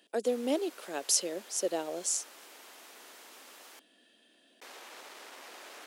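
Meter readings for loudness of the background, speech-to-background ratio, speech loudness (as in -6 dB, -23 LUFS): -50.5 LUFS, 19.0 dB, -31.5 LUFS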